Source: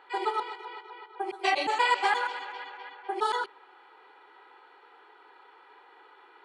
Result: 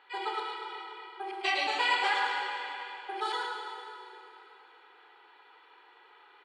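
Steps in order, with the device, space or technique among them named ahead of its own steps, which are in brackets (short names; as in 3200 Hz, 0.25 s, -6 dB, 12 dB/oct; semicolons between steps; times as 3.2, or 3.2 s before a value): PA in a hall (HPF 190 Hz 6 dB/oct; bell 3100 Hz +8 dB 1.8 oct; echo 0.108 s -6 dB; reverb RT60 3.2 s, pre-delay 15 ms, DRR 2.5 dB); gain -8 dB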